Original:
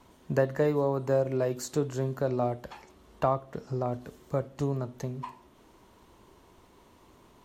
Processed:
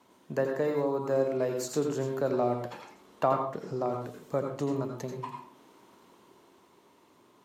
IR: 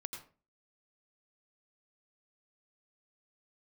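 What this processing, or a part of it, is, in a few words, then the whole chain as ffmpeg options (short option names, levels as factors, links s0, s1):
far laptop microphone: -filter_complex "[1:a]atrim=start_sample=2205[s0];[0:a][s0]afir=irnorm=-1:irlink=0,highpass=190,dynaudnorm=f=220:g=13:m=1.58"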